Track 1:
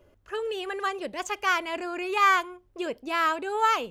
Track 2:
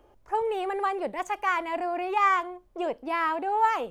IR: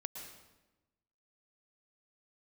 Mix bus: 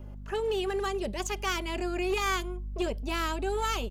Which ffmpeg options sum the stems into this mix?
-filter_complex "[0:a]aeval=exprs='val(0)+0.00631*(sin(2*PI*50*n/s)+sin(2*PI*2*50*n/s)/2+sin(2*PI*3*50*n/s)/3+sin(2*PI*4*50*n/s)/4+sin(2*PI*5*50*n/s)/5)':c=same,volume=3dB[a];[1:a]lowpass=f=1.4k:w=0.5412,lowpass=f=1.4k:w=1.3066,adelay=5,volume=-2dB[b];[a][b]amix=inputs=2:normalize=0,asubboost=boost=6.5:cutoff=54,acrossover=split=400|3000[c][d][e];[d]acompressor=threshold=-43dB:ratio=2[f];[c][f][e]amix=inputs=3:normalize=0,aeval=exprs='clip(val(0),-1,0.0501)':c=same"

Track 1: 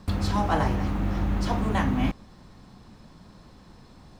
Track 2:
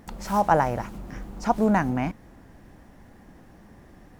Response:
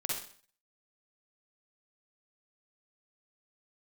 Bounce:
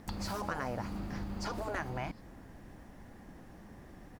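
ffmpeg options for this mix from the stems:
-filter_complex "[0:a]equalizer=f=4.7k:w=5.2:g=15,acompressor=threshold=-28dB:ratio=6,volume=-5dB[a];[1:a]adelay=0.6,volume=-2dB,asplit=2[b][c];[c]apad=whole_len=184849[d];[a][d]sidechaingate=range=-33dB:threshold=-40dB:ratio=16:detection=peak[e];[e][b]amix=inputs=2:normalize=0,afftfilt=real='re*lt(hypot(re,im),0.282)':imag='im*lt(hypot(re,im),0.282)':win_size=1024:overlap=0.75,acompressor=threshold=-36dB:ratio=2.5"

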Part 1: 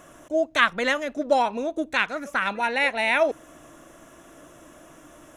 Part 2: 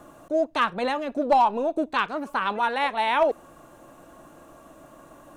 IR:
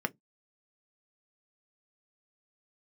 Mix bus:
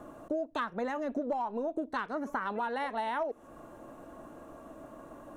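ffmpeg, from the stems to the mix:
-filter_complex "[0:a]volume=-12.5dB[a];[1:a]tiltshelf=f=1.2k:g=5.5,volume=-4dB,asplit=3[b][c][d];[c]volume=-16dB[e];[d]apad=whole_len=236664[f];[a][f]sidechaingate=range=-33dB:threshold=-42dB:ratio=16:detection=peak[g];[2:a]atrim=start_sample=2205[h];[e][h]afir=irnorm=-1:irlink=0[i];[g][b][i]amix=inputs=3:normalize=0,acompressor=threshold=-30dB:ratio=12"

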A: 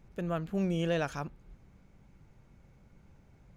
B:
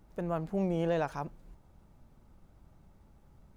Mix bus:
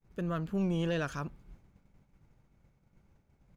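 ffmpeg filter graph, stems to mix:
-filter_complex "[0:a]volume=-0.5dB[a];[1:a]adelay=1,volume=-8dB[b];[a][b]amix=inputs=2:normalize=0,asoftclip=type=tanh:threshold=-23dB,agate=range=-33dB:threshold=-51dB:ratio=3:detection=peak"

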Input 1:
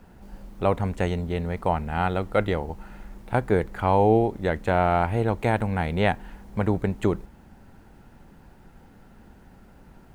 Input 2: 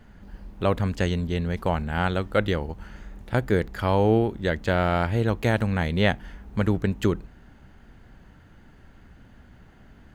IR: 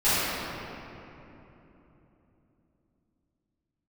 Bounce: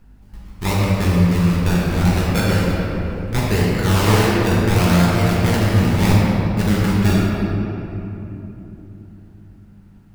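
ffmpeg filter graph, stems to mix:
-filter_complex "[0:a]volume=-4dB[a];[1:a]agate=range=-17dB:threshold=-39dB:ratio=16:detection=peak,acrusher=samples=29:mix=1:aa=0.000001:lfo=1:lforange=29:lforate=0.74,aeval=exprs='val(0)+0.00251*(sin(2*PI*50*n/s)+sin(2*PI*2*50*n/s)/2+sin(2*PI*3*50*n/s)/3+sin(2*PI*4*50*n/s)/4+sin(2*PI*5*50*n/s)/5)':c=same,volume=-3.5dB,asplit=2[b][c];[c]volume=-7dB[d];[2:a]atrim=start_sample=2205[e];[d][e]afir=irnorm=-1:irlink=0[f];[a][b][f]amix=inputs=3:normalize=0,equalizer=f=590:t=o:w=1.9:g=-6"

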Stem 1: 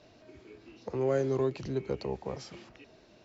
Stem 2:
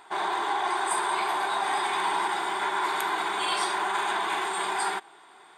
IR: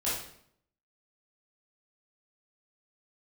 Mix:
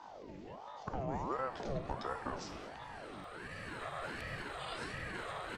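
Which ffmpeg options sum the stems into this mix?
-filter_complex "[0:a]acompressor=threshold=-33dB:ratio=5,aeval=exprs='val(0)+0.00316*(sin(2*PI*50*n/s)+sin(2*PI*2*50*n/s)/2+sin(2*PI*3*50*n/s)/3+sin(2*PI*4*50*n/s)/4+sin(2*PI*5*50*n/s)/5)':c=same,volume=-1dB,asplit=3[a][b][c];[b]volume=-12.5dB[d];[1:a]acrossover=split=6900[e][f];[f]acompressor=threshold=-46dB:ratio=4:attack=1:release=60[g];[e][g]amix=inputs=2:normalize=0,lowshelf=f=480:g=9,adelay=1200,volume=-4.5dB,afade=t=out:st=2.48:d=0.3:silence=0.334965[h];[c]apad=whole_len=298853[i];[h][i]sidechaincompress=threshold=-56dB:ratio=6:attack=8.3:release=737[j];[2:a]atrim=start_sample=2205[k];[d][k]afir=irnorm=-1:irlink=0[l];[a][j][l]amix=inputs=3:normalize=0,aeval=exprs='val(0)*sin(2*PI*580*n/s+580*0.6/1.4*sin(2*PI*1.4*n/s))':c=same"

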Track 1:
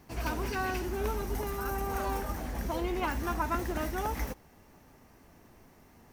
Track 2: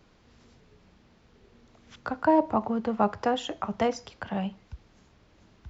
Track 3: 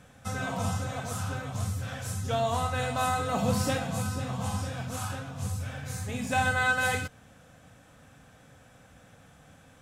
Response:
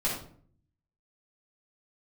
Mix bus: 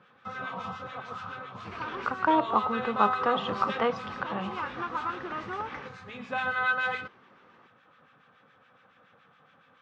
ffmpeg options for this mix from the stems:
-filter_complex "[0:a]alimiter=limit=-24dB:level=0:latency=1:release=239,adelay=1550,volume=0.5dB[a];[1:a]dynaudnorm=f=130:g=17:m=11.5dB,volume=-7.5dB,asplit=2[b][c];[2:a]acrossover=split=1300[d][e];[d]aeval=exprs='val(0)*(1-0.7/2+0.7/2*cos(2*PI*7.1*n/s))':c=same[f];[e]aeval=exprs='val(0)*(1-0.7/2-0.7/2*cos(2*PI*7.1*n/s))':c=same[g];[f][g]amix=inputs=2:normalize=0,volume=0.5dB[h];[c]apad=whole_len=338263[i];[a][i]sidechaincompress=threshold=-35dB:ratio=8:attack=16:release=197[j];[j][b][h]amix=inputs=3:normalize=0,asoftclip=type=hard:threshold=-11.5dB,highpass=260,equalizer=f=280:t=q:w=4:g=-6,equalizer=f=660:t=q:w=4:g=-8,equalizer=f=1.2k:t=q:w=4:g=9,lowpass=f=3.7k:w=0.5412,lowpass=f=3.7k:w=1.3066"

